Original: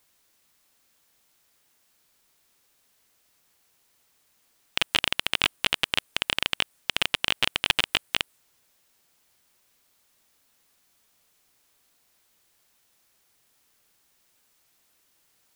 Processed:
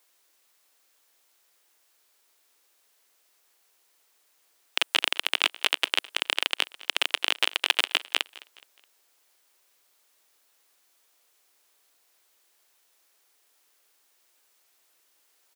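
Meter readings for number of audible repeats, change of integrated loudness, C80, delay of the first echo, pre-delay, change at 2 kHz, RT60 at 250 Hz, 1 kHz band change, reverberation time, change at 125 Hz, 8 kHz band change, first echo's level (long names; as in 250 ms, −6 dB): 2, 0.0 dB, no reverb audible, 210 ms, no reverb audible, 0.0 dB, no reverb audible, 0.0 dB, no reverb audible, below −25 dB, 0.0 dB, −20.5 dB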